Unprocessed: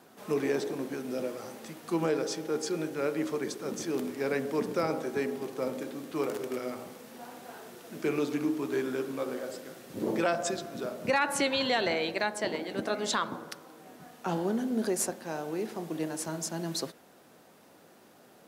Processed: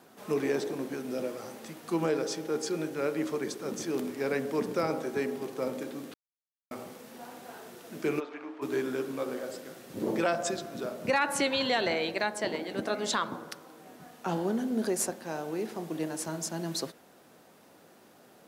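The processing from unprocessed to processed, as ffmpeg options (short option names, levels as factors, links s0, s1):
-filter_complex "[0:a]asplit=3[s0][s1][s2];[s0]afade=t=out:st=8.19:d=0.02[s3];[s1]highpass=670,lowpass=2100,afade=t=in:st=8.19:d=0.02,afade=t=out:st=8.61:d=0.02[s4];[s2]afade=t=in:st=8.61:d=0.02[s5];[s3][s4][s5]amix=inputs=3:normalize=0,asplit=3[s6][s7][s8];[s6]atrim=end=6.14,asetpts=PTS-STARTPTS,afade=t=out:st=6.136:d=0.004:c=hsin[s9];[s7]atrim=start=6.14:end=6.71,asetpts=PTS-STARTPTS,volume=0[s10];[s8]atrim=start=6.71,asetpts=PTS-STARTPTS,afade=t=in:d=0.004:c=hsin[s11];[s9][s10][s11]concat=n=3:v=0:a=1"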